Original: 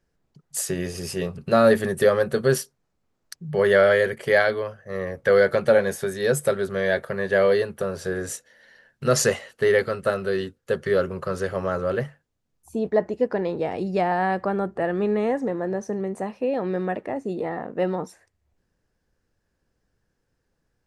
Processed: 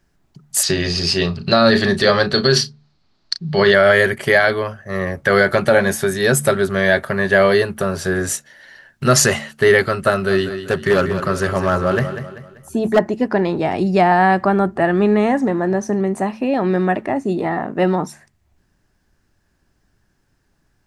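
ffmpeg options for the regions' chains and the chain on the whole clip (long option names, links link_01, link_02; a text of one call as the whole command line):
ffmpeg -i in.wav -filter_complex "[0:a]asettb=1/sr,asplit=3[link_01][link_02][link_03];[link_01]atrim=end=0.634[link_04];[link_02]atrim=start=0.63:end=3.74,asetpts=PTS-STARTPTS,afade=type=in:duration=0.004:curve=qsin,afade=type=out:start_time=3.106:duration=0.004:curve=qsin,lowpass=frequency=4400:width_type=q:width=5.2,bandreject=frequency=60:width_type=h:width=6,bandreject=frequency=120:width_type=h:width=6,bandreject=frequency=180:width_type=h:width=6,bandreject=frequency=240:width_type=h:width=6,bandreject=frequency=300:width_type=h:width=6,bandreject=frequency=360:width_type=h:width=6,bandreject=frequency=420:width_type=h:width=6,bandreject=frequency=480:width_type=h:width=6,asplit=2[link_05][link_06];[link_06]adelay=35,volume=-13dB[link_07];[link_05][link_07]amix=inputs=2:normalize=0,atrim=end_sample=137151[link_08];[link_03]atrim=start=3.736[link_09];[link_04][link_08]acrossfade=duration=0.004:curve1=hsin:curve2=qsin[link_10];[link_10][link_09]acrossfade=duration=0.004:curve1=qsin:curve2=hsin,asettb=1/sr,asplit=3[link_11][link_12][link_13];[link_11]atrim=end=10.114[link_14];[link_12]atrim=start=10.11:end=12.99,asetpts=PTS-STARTPTS,afade=type=in:duration=0.004:curve=qsin,afade=type=out:start_time=2.876:duration=0.004:curve=qsin,asoftclip=type=hard:threshold=-16dB,aecho=1:1:194|388|582|776:0.316|0.123|0.0481|0.0188,atrim=end_sample=127008[link_15];[link_13]atrim=start=12.986[link_16];[link_14][link_15]acrossfade=duration=0.004:curve1=hsin:curve2=qsin[link_17];[link_17][link_16]acrossfade=duration=0.004:curve1=qsin:curve2=hsin,equalizer=frequency=490:width_type=o:width=0.26:gain=-14,bandreject=frequency=73.58:width_type=h:width=4,bandreject=frequency=147.16:width_type=h:width=4,bandreject=frequency=220.74:width_type=h:width=4,alimiter=level_in=12dB:limit=-1dB:release=50:level=0:latency=1,volume=-1.5dB" out.wav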